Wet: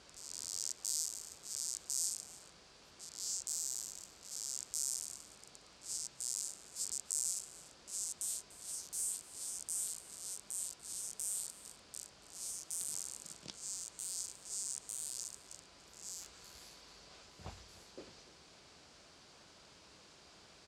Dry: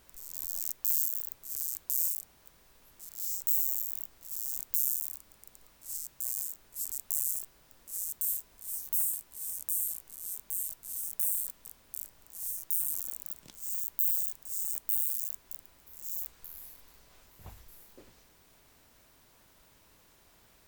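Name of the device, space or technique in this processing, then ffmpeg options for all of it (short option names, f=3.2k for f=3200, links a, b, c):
car door speaker: -af "highpass=87,equalizer=f=110:t=q:w=4:g=-7,equalizer=f=250:t=q:w=4:g=-4,equalizer=f=950:t=q:w=4:g=-3,equalizer=f=1.9k:t=q:w=4:g=-4,equalizer=f=4.7k:t=q:w=4:g=6,lowpass=f=7.7k:w=0.5412,lowpass=f=7.7k:w=1.3066,aecho=1:1:293:0.119,volume=4.5dB"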